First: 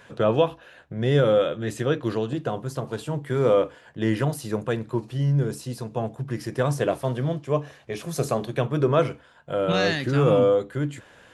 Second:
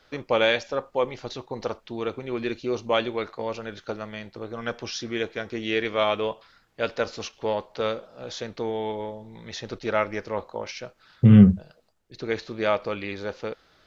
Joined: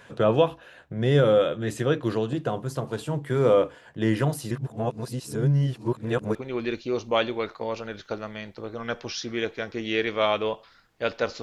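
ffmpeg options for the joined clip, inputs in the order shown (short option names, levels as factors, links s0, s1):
-filter_complex "[0:a]apad=whole_dur=11.42,atrim=end=11.42,asplit=2[s0][s1];[s0]atrim=end=4.512[s2];[s1]atrim=start=4.508:end=6.352,asetpts=PTS-STARTPTS,areverse[s3];[1:a]atrim=start=2.128:end=7.2[s4];[s2][s3]acrossfade=d=0.004:c1=hsin:c2=hsin[s5];[s5][s4]acrossfade=d=0.004:c1=hsin:c2=hsin"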